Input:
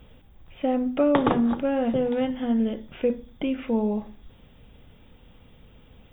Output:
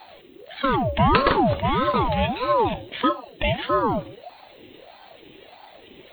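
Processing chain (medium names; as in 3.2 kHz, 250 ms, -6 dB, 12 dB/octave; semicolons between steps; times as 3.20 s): coarse spectral quantiser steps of 15 dB; resonant high shelf 1.9 kHz +6.5 dB, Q 3; ring modulator with a swept carrier 570 Hz, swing 45%, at 1.6 Hz; trim +6 dB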